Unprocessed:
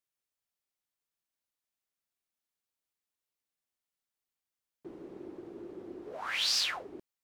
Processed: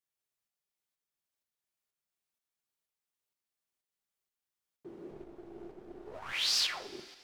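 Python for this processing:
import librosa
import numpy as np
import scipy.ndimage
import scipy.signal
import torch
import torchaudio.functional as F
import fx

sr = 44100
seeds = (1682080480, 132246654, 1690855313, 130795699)

y = fx.halfwave_gain(x, sr, db=-12.0, at=(5.11, 6.33))
y = fx.rev_double_slope(y, sr, seeds[0], early_s=0.38, late_s=3.5, knee_db=-19, drr_db=6.5)
y = fx.tremolo_shape(y, sr, shape='saw_up', hz=2.1, depth_pct=40)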